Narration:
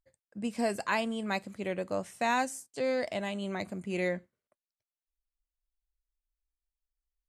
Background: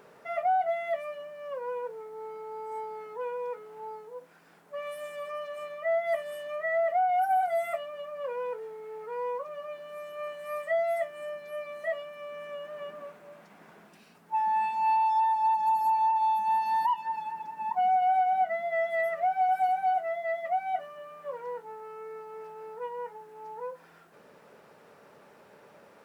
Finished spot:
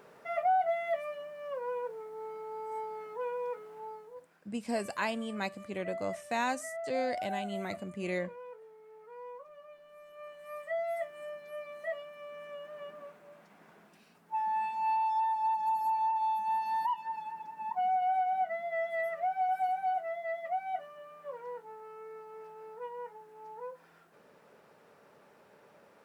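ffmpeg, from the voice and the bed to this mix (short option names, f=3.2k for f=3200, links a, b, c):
-filter_complex "[0:a]adelay=4100,volume=-3dB[a];[1:a]volume=6.5dB,afade=t=out:st=3.64:d=0.93:silence=0.266073,afade=t=in:st=9.98:d=1.15:silence=0.398107[b];[a][b]amix=inputs=2:normalize=0"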